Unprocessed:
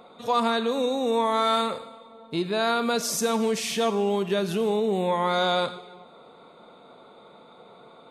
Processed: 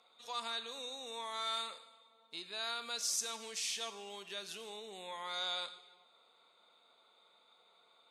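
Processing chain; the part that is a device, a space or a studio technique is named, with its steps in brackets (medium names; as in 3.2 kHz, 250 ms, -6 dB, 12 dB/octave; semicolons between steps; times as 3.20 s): piezo pickup straight into a mixer (low-pass 6.5 kHz 12 dB/octave; differentiator); trim -1.5 dB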